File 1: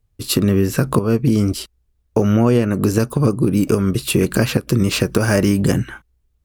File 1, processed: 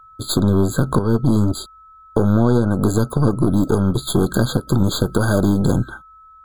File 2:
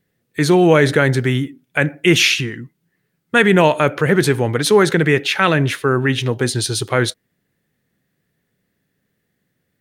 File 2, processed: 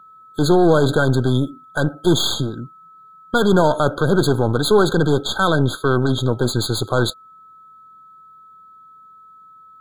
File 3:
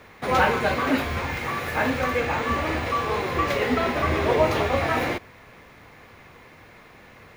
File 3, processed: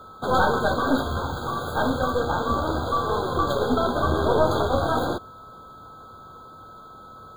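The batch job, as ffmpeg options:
ffmpeg -i in.wav -filter_complex "[0:a]aeval=exprs='0.891*(cos(1*acos(clip(val(0)/0.891,-1,1)))-cos(1*PI/2))+0.0794*(cos(8*acos(clip(val(0)/0.891,-1,1)))-cos(8*PI/2))':channel_layout=same,aeval=exprs='val(0)+0.00631*sin(2*PI*1300*n/s)':channel_layout=same,asplit=2[link_01][link_02];[link_02]alimiter=limit=-11dB:level=0:latency=1:release=11,volume=1dB[link_03];[link_01][link_03]amix=inputs=2:normalize=0,afftfilt=real='re*eq(mod(floor(b*sr/1024/1600),2),0)':imag='im*eq(mod(floor(b*sr/1024/1600),2),0)':win_size=1024:overlap=0.75,volume=-5.5dB" out.wav

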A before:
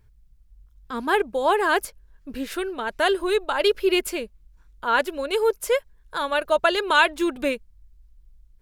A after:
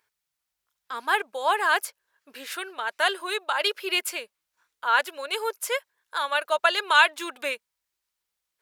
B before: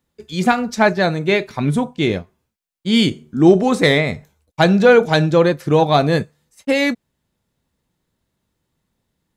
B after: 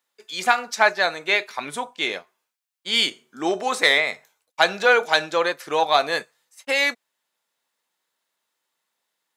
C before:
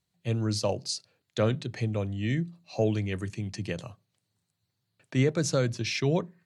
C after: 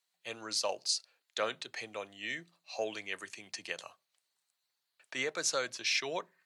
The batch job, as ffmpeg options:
ffmpeg -i in.wav -af "highpass=850,volume=1dB" out.wav

